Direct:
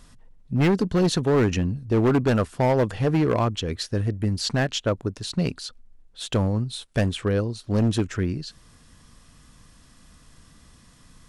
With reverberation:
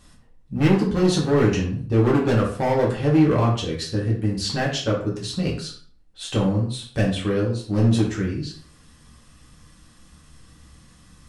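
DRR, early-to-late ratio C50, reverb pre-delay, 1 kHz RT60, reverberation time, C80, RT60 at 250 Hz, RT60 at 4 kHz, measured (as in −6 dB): −4.0 dB, 6.0 dB, 3 ms, 0.45 s, 0.50 s, 10.5 dB, 0.50 s, 0.35 s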